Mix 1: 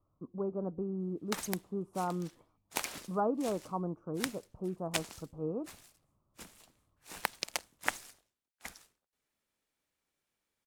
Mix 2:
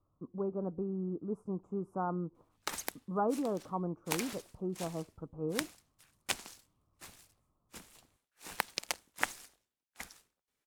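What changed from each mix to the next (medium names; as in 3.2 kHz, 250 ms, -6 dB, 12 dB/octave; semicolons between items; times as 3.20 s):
background: entry +1.35 s; master: add peaking EQ 630 Hz -2.5 dB 0.21 oct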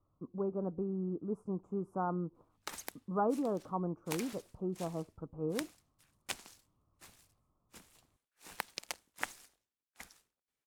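background -5.5 dB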